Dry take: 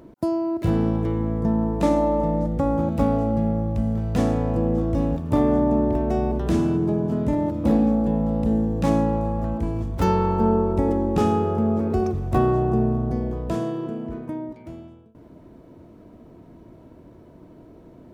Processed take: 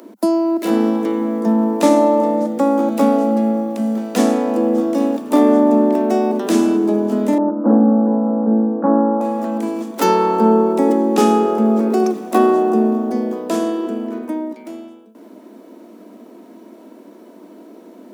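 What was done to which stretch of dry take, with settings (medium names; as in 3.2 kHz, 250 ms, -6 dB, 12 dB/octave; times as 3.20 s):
7.38–9.21 s: Chebyshev low-pass 1.5 kHz, order 5
whole clip: steep high-pass 200 Hz 96 dB/octave; treble shelf 4.6 kHz +10 dB; trim +7.5 dB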